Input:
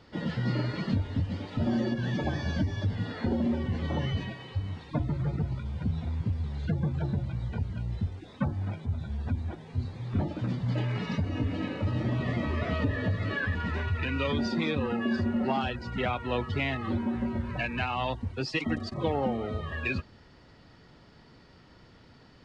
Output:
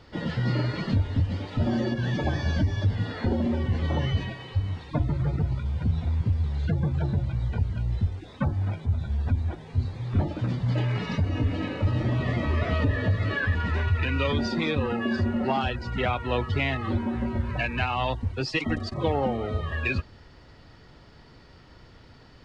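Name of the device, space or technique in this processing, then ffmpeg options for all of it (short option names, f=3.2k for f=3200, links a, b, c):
low shelf boost with a cut just above: -af "lowshelf=f=79:g=7,equalizer=f=200:t=o:w=1:g=-4,volume=3.5dB"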